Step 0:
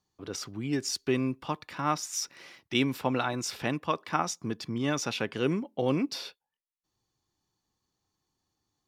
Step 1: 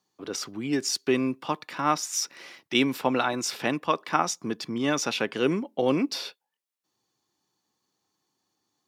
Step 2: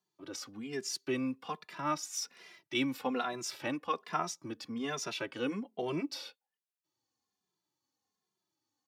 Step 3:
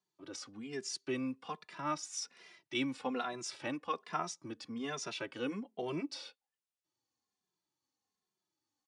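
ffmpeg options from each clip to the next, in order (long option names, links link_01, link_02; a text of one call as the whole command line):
ffmpeg -i in.wav -af "highpass=200,volume=4.5dB" out.wav
ffmpeg -i in.wav -filter_complex "[0:a]asplit=2[link_01][link_02];[link_02]adelay=2.5,afreqshift=-1.2[link_03];[link_01][link_03]amix=inputs=2:normalize=1,volume=-6.5dB" out.wav
ffmpeg -i in.wav -af "aresample=22050,aresample=44100,volume=-3dB" out.wav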